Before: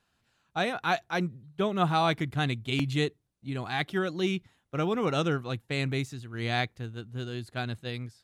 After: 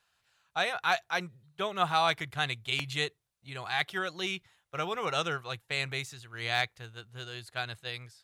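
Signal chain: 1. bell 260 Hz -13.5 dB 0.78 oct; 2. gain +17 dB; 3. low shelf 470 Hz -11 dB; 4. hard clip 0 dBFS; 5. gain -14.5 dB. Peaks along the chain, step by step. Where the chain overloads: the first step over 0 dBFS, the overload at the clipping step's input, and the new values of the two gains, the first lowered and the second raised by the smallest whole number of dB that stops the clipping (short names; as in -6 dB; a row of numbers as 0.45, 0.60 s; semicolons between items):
-13.0, +4.0, +3.0, 0.0, -14.5 dBFS; step 2, 3.0 dB; step 2 +14 dB, step 5 -11.5 dB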